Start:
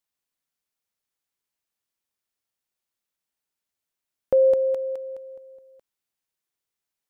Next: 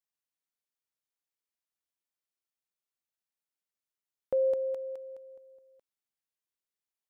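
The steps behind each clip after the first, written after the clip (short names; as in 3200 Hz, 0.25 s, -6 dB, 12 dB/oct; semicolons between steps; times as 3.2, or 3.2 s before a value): low shelf 200 Hz -4 dB; gain -9 dB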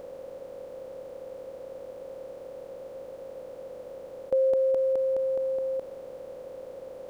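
per-bin compression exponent 0.2; gain +3 dB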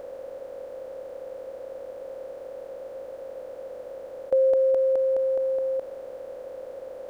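fifteen-band EQ 160 Hz -8 dB, 630 Hz +5 dB, 1600 Hz +5 dB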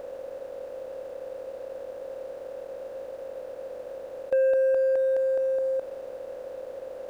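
sample leveller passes 1; gain -3.5 dB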